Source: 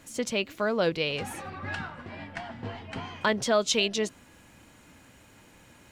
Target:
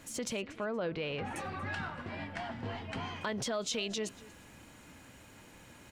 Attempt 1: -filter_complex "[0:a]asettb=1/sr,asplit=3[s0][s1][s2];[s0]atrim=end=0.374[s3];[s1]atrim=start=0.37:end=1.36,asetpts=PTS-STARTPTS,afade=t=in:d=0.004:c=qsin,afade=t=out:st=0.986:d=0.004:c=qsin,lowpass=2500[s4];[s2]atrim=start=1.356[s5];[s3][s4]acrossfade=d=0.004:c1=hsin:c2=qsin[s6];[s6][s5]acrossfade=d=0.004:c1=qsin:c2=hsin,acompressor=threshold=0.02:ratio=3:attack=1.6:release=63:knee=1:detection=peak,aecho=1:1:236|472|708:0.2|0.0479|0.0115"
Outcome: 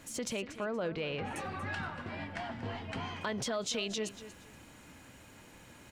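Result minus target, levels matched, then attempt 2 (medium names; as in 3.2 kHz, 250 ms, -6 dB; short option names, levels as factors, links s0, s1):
echo-to-direct +6.5 dB
-filter_complex "[0:a]asettb=1/sr,asplit=3[s0][s1][s2];[s0]atrim=end=0.374[s3];[s1]atrim=start=0.37:end=1.36,asetpts=PTS-STARTPTS,afade=t=in:d=0.004:c=qsin,afade=t=out:st=0.986:d=0.004:c=qsin,lowpass=2500[s4];[s2]atrim=start=1.356[s5];[s3][s4]acrossfade=d=0.004:c1=hsin:c2=qsin[s6];[s6][s5]acrossfade=d=0.004:c1=qsin:c2=hsin,acompressor=threshold=0.02:ratio=3:attack=1.6:release=63:knee=1:detection=peak,aecho=1:1:236|472:0.0944|0.0227"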